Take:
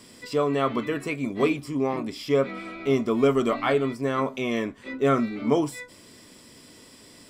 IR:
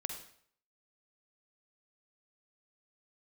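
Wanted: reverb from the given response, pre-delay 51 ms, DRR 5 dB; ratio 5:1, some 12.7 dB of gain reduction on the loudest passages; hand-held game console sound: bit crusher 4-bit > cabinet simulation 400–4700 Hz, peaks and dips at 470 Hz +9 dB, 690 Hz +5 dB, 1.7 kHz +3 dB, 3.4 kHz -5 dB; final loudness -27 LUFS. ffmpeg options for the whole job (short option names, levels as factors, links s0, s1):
-filter_complex "[0:a]acompressor=threshold=0.0282:ratio=5,asplit=2[s0][s1];[1:a]atrim=start_sample=2205,adelay=51[s2];[s1][s2]afir=irnorm=-1:irlink=0,volume=0.562[s3];[s0][s3]amix=inputs=2:normalize=0,acrusher=bits=3:mix=0:aa=0.000001,highpass=400,equalizer=f=470:t=q:w=4:g=9,equalizer=f=690:t=q:w=4:g=5,equalizer=f=1700:t=q:w=4:g=3,equalizer=f=3400:t=q:w=4:g=-5,lowpass=f=4700:w=0.5412,lowpass=f=4700:w=1.3066,volume=3.76"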